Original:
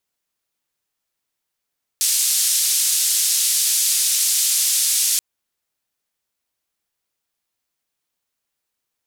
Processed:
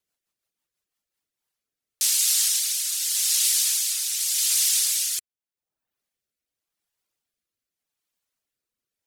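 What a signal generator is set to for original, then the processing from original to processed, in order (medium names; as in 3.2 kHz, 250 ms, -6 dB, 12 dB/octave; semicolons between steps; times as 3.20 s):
noise band 4.8–11 kHz, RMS -18.5 dBFS 3.18 s
reverb removal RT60 0.72 s; rotary cabinet horn 6 Hz, later 0.85 Hz, at 0.82 s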